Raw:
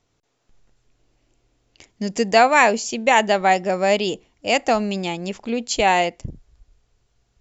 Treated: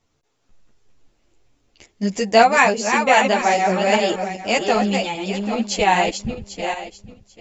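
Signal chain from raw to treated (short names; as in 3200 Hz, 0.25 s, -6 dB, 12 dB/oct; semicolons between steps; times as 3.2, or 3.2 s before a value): regenerating reverse delay 0.396 s, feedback 42%, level -5 dB; ensemble effect; gain +3 dB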